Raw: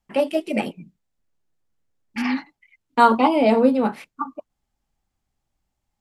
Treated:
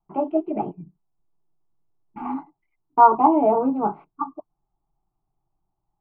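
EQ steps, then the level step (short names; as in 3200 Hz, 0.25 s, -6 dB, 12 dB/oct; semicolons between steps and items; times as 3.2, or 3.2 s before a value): LPF 1400 Hz 24 dB/oct; fixed phaser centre 350 Hz, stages 8; +3.5 dB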